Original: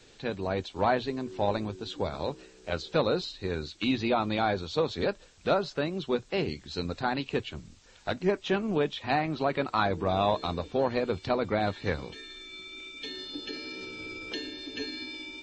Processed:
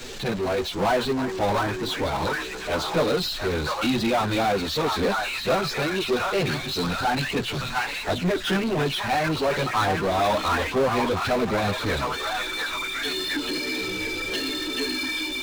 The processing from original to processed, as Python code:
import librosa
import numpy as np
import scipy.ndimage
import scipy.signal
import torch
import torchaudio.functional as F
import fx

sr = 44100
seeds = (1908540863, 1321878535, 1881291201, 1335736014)

y = fx.echo_stepped(x, sr, ms=712, hz=1200.0, octaves=0.7, feedback_pct=70, wet_db=-1)
y = fx.chorus_voices(y, sr, voices=4, hz=0.47, base_ms=12, depth_ms=4.0, mix_pct=65)
y = fx.power_curve(y, sr, exponent=0.5)